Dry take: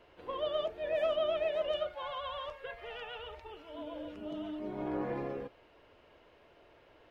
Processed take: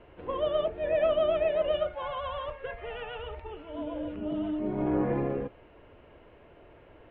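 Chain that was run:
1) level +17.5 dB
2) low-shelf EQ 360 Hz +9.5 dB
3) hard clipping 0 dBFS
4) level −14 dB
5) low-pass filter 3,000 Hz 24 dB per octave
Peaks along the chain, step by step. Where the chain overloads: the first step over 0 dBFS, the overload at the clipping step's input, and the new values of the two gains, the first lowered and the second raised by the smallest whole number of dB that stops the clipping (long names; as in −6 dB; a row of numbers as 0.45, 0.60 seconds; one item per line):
−4.0, −2.0, −2.0, −16.0, −16.0 dBFS
no step passes full scale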